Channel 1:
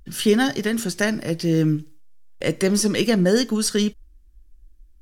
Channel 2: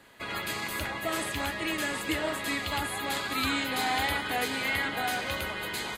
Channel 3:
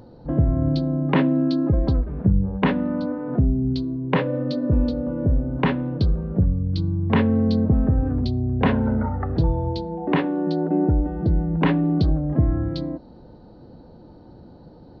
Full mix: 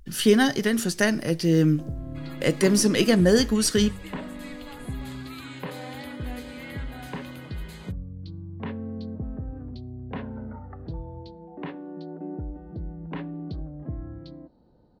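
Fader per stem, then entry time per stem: -0.5 dB, -13.5 dB, -15.0 dB; 0.00 s, 1.95 s, 1.50 s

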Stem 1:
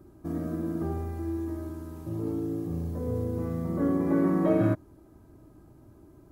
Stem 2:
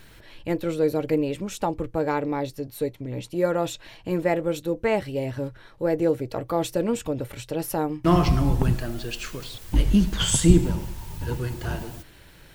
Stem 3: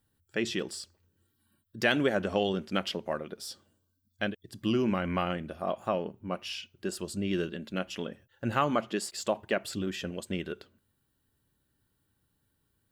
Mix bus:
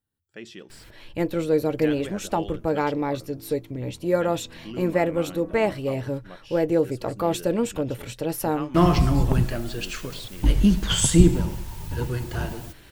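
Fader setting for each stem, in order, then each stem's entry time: -17.5 dB, +1.0 dB, -10.0 dB; 1.05 s, 0.70 s, 0.00 s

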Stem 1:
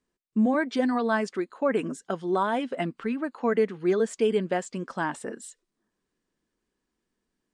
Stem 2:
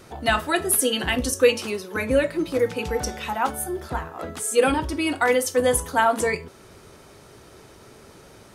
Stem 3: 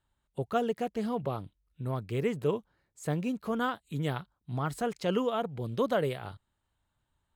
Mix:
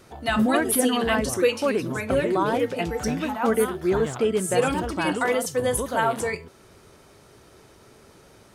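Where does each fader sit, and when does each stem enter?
+1.0 dB, -4.0 dB, -1.5 dB; 0.00 s, 0.00 s, 0.00 s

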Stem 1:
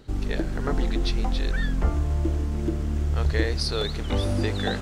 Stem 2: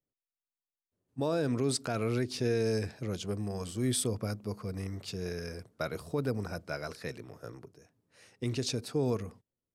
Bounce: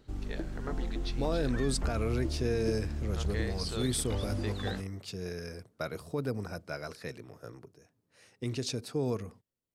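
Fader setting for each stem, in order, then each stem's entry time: -10.0 dB, -1.5 dB; 0.00 s, 0.00 s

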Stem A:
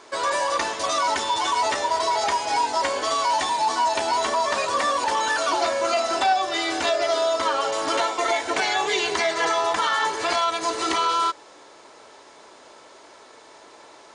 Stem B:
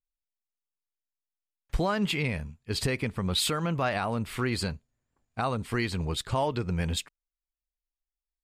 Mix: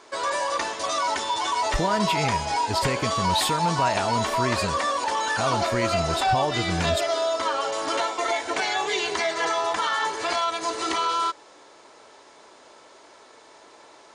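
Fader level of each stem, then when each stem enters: -2.5 dB, +1.5 dB; 0.00 s, 0.00 s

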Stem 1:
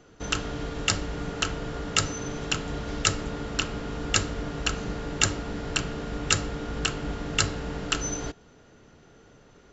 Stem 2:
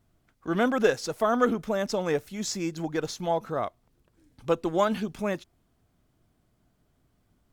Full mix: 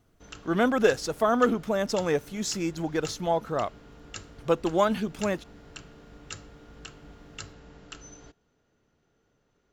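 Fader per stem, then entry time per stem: -17.0 dB, +1.0 dB; 0.00 s, 0.00 s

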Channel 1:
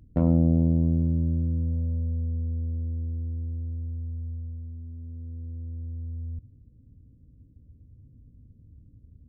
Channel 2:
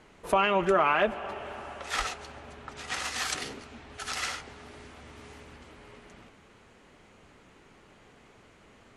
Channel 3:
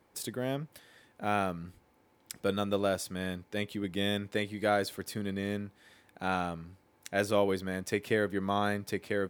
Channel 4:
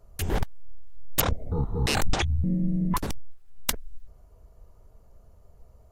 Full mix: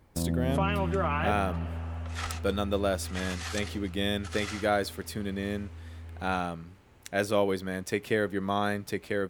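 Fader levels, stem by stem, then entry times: -9.0 dB, -6.5 dB, +1.5 dB, mute; 0.00 s, 0.25 s, 0.00 s, mute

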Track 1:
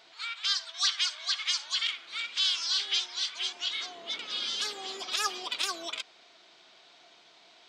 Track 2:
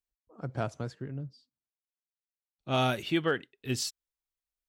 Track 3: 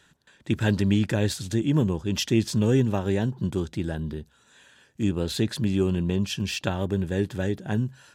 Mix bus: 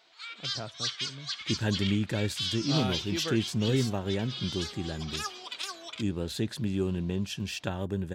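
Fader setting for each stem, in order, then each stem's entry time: -5.5 dB, -7.0 dB, -6.0 dB; 0.00 s, 0.00 s, 1.00 s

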